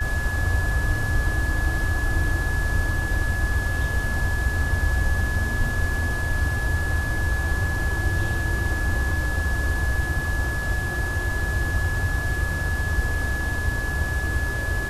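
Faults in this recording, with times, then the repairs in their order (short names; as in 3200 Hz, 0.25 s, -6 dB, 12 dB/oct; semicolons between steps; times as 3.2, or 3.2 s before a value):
tone 1700 Hz -28 dBFS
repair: notch 1700 Hz, Q 30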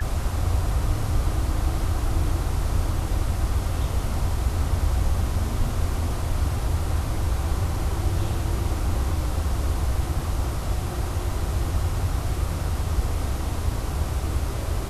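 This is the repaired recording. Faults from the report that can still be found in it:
none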